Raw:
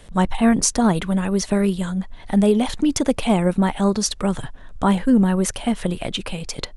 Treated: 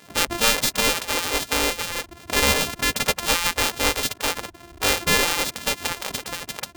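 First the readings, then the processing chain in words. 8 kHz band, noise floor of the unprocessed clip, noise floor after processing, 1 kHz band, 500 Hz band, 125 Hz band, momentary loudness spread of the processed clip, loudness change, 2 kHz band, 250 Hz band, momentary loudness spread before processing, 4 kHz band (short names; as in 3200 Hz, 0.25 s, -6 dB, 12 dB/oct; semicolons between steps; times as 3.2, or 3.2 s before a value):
+2.5 dB, -39 dBFS, -49 dBFS, -0.5 dB, -5.0 dB, -11.5 dB, 10 LU, -1.5 dB, +9.0 dB, -16.0 dB, 10 LU, +8.0 dB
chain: sample sorter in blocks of 128 samples; spectral gate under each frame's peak -15 dB weak; gain +4.5 dB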